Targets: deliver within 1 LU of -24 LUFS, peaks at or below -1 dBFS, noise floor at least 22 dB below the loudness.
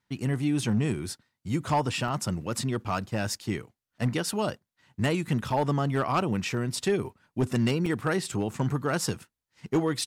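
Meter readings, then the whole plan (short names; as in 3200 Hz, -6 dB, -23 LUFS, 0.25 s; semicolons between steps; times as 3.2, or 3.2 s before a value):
clipped 0.5%; flat tops at -18.0 dBFS; dropouts 3; longest dropout 4.2 ms; loudness -29.0 LUFS; peak -18.0 dBFS; loudness target -24.0 LUFS
-> clip repair -18 dBFS; interpolate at 2.08/5.5/7.86, 4.2 ms; gain +5 dB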